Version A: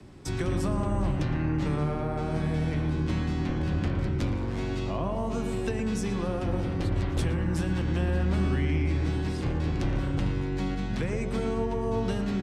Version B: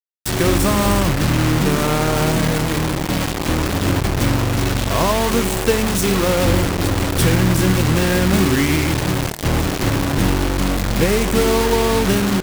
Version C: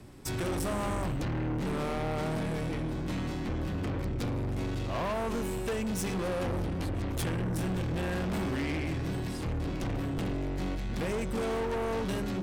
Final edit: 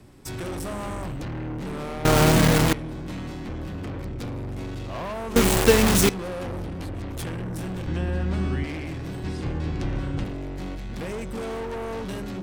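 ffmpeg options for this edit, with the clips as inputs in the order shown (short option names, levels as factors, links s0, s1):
-filter_complex "[1:a]asplit=2[s0][s1];[0:a]asplit=2[s2][s3];[2:a]asplit=5[s4][s5][s6][s7][s8];[s4]atrim=end=2.052[s9];[s0]atrim=start=2.048:end=2.732[s10];[s5]atrim=start=2.728:end=5.362[s11];[s1]atrim=start=5.358:end=6.092[s12];[s6]atrim=start=6.088:end=7.872[s13];[s2]atrim=start=7.868:end=8.642[s14];[s7]atrim=start=8.638:end=9.242[s15];[s3]atrim=start=9.238:end=10.242[s16];[s8]atrim=start=10.238[s17];[s9][s10]acrossfade=d=0.004:c1=hsin:c2=hsin[s18];[s18][s11]acrossfade=d=0.004:c1=hsin:c2=hsin[s19];[s19][s12]acrossfade=d=0.004:c1=hsin:c2=hsin[s20];[s20][s13]acrossfade=d=0.004:c1=hsin:c2=hsin[s21];[s21][s14]acrossfade=d=0.004:c1=hsin:c2=hsin[s22];[s22][s15]acrossfade=d=0.004:c1=hsin:c2=hsin[s23];[s23][s16]acrossfade=d=0.004:c1=hsin:c2=hsin[s24];[s24][s17]acrossfade=d=0.004:c1=hsin:c2=hsin"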